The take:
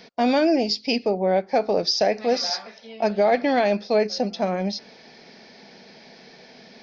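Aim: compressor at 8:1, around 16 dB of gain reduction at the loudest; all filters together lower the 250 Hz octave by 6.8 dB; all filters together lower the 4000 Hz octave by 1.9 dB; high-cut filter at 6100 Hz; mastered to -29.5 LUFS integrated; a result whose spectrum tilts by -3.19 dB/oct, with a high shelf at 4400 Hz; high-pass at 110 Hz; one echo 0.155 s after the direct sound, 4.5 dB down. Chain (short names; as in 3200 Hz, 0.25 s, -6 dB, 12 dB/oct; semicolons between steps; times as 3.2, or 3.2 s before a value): HPF 110 Hz; LPF 6100 Hz; bell 250 Hz -8.5 dB; bell 4000 Hz -7 dB; high shelf 4400 Hz +8.5 dB; compressor 8:1, threshold -34 dBFS; echo 0.155 s -4.5 dB; gain +8 dB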